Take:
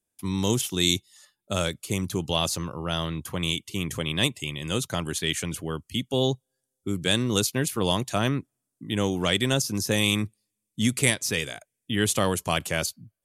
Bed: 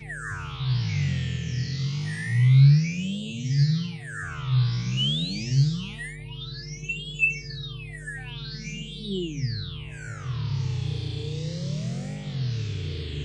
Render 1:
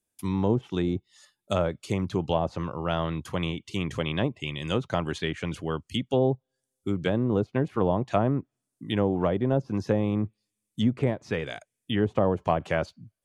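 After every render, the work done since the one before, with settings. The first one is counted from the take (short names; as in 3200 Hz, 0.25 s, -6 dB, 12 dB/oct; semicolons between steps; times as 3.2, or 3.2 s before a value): treble ducked by the level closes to 750 Hz, closed at -20 dBFS; dynamic EQ 730 Hz, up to +5 dB, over -40 dBFS, Q 1.1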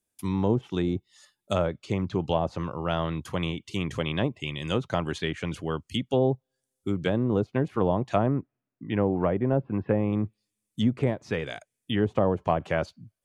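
1.66–2.2 air absorption 84 m; 8.26–10.13 steep low-pass 2700 Hz; 12.24–12.78 high shelf 4100 Hz -5.5 dB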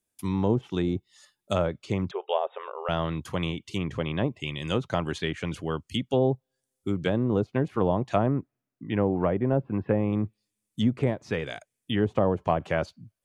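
2.11–2.89 brick-wall FIR band-pass 370–3800 Hz; 3.78–4.28 LPF 2100 Hz 6 dB/oct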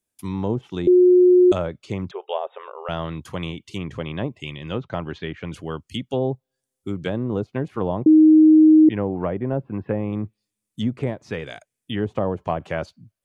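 0.87–1.52 bleep 361 Hz -9.5 dBFS; 4.56–5.53 air absorption 210 m; 8.06–8.89 bleep 312 Hz -8 dBFS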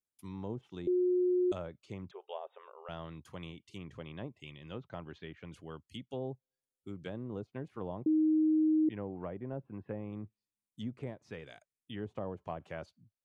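gain -16 dB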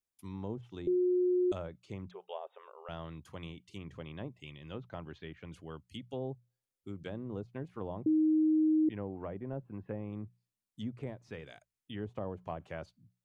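low shelf 65 Hz +8 dB; notches 60/120/180 Hz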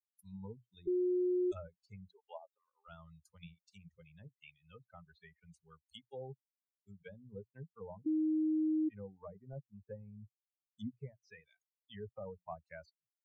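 per-bin expansion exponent 3; limiter -29 dBFS, peak gain reduction 5 dB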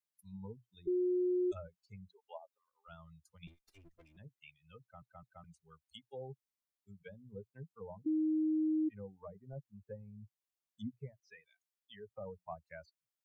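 3.47–4.17 minimum comb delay 2.5 ms; 4.81 stutter in place 0.21 s, 3 plays; 11.2–12.11 HPF 510 Hz 6 dB/oct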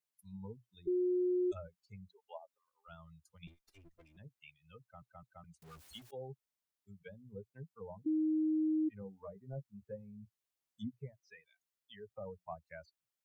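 5.62–6.11 zero-crossing step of -52 dBFS; 9–10.85 doubler 15 ms -6 dB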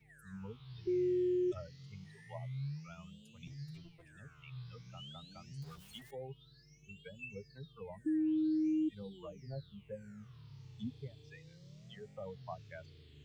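add bed -26 dB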